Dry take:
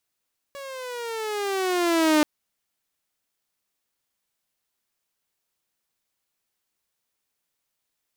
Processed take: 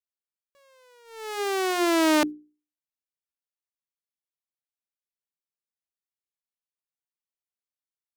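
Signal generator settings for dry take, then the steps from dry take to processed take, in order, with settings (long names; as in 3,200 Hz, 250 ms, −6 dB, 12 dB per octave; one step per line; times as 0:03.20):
pitch glide with a swell saw, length 1.68 s, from 564 Hz, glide −11 semitones, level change +20 dB, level −13 dB
noise gate −29 dBFS, range −22 dB
mains-hum notches 60/120/180/240/300/360/420 Hz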